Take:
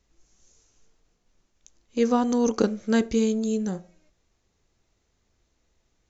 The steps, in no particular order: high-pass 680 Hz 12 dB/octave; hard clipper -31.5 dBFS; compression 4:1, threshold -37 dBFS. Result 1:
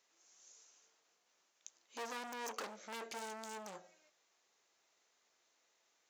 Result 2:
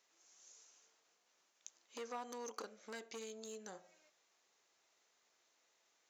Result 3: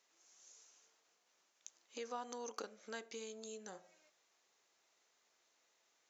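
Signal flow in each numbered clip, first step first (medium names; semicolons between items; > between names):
hard clipper > compression > high-pass; compression > hard clipper > high-pass; compression > high-pass > hard clipper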